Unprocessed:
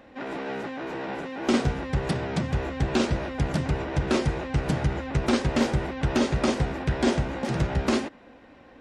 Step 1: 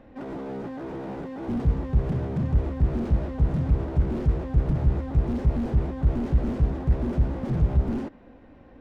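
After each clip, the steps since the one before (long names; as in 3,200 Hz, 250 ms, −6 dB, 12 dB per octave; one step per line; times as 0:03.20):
spectral tilt −3 dB per octave
slew-rate limiting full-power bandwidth 22 Hz
level −4 dB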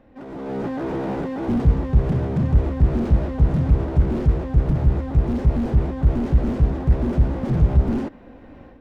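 automatic gain control gain up to 12 dB
level −3 dB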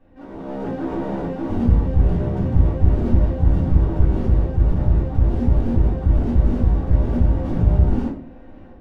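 convolution reverb, pre-delay 3 ms, DRR −8.5 dB
level −11 dB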